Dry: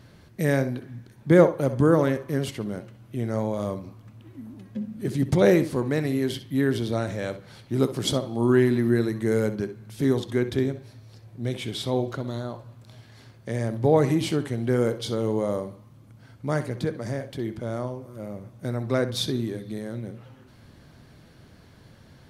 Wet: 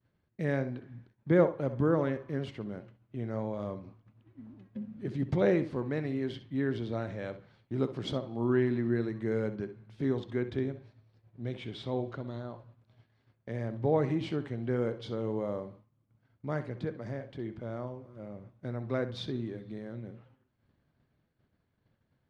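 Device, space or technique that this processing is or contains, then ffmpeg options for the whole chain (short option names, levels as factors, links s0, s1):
hearing-loss simulation: -af "lowpass=3100,agate=range=0.0224:threshold=0.01:ratio=3:detection=peak,volume=0.398"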